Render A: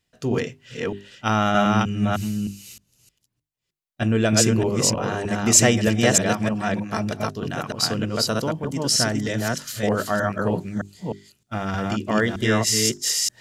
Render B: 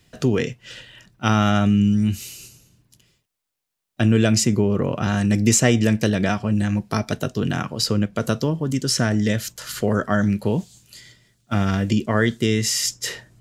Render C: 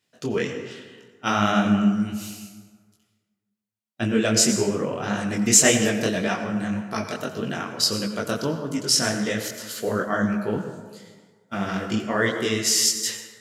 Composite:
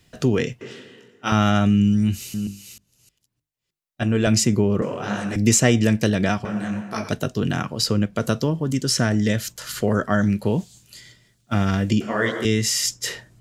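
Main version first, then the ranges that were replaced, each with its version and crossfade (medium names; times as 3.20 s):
B
0.61–1.32 s: from C
2.34–4.27 s: from A
4.82–5.36 s: from C
6.45–7.09 s: from C
12.01–12.45 s: from C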